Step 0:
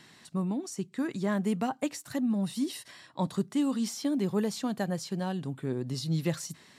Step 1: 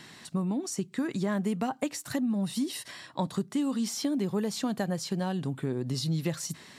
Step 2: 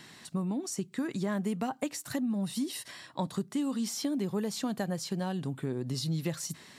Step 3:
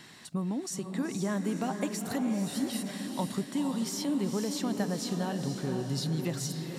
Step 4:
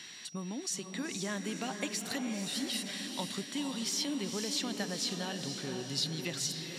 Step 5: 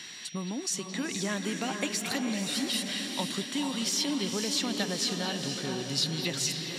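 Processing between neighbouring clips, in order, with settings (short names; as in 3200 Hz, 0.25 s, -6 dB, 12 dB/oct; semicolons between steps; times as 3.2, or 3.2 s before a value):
compressor 3:1, threshold -34 dBFS, peak gain reduction 8.5 dB; gain +6 dB
high shelf 10000 Hz +4 dB; gain -2.5 dB
diffused feedback echo 0.488 s, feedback 51%, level -5.5 dB
whine 5700 Hz -56 dBFS; weighting filter D; gain -5 dB
delay with a stepping band-pass 0.219 s, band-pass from 2800 Hz, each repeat -1.4 oct, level -3.5 dB; gain +4.5 dB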